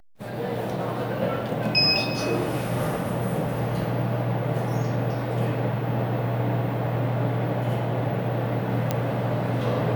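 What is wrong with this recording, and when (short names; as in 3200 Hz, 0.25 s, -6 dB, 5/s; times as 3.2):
8.91 pop -9 dBFS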